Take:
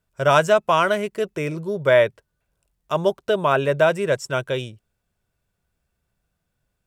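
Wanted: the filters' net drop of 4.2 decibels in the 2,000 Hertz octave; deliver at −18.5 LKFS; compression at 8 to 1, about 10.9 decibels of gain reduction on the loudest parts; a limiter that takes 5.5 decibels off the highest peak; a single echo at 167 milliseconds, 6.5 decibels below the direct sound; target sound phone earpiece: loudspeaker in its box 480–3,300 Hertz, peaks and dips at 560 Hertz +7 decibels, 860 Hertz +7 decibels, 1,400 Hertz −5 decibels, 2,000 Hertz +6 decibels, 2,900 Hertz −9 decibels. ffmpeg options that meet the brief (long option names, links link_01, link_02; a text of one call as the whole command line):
ffmpeg -i in.wav -af "equalizer=frequency=2000:width_type=o:gain=-4.5,acompressor=threshold=-23dB:ratio=8,alimiter=limit=-18.5dB:level=0:latency=1,highpass=480,equalizer=frequency=560:width_type=q:width=4:gain=7,equalizer=frequency=860:width_type=q:width=4:gain=7,equalizer=frequency=1400:width_type=q:width=4:gain=-5,equalizer=frequency=2000:width_type=q:width=4:gain=6,equalizer=frequency=2900:width_type=q:width=4:gain=-9,lowpass=frequency=3300:width=0.5412,lowpass=frequency=3300:width=1.3066,aecho=1:1:167:0.473,volume=9dB" out.wav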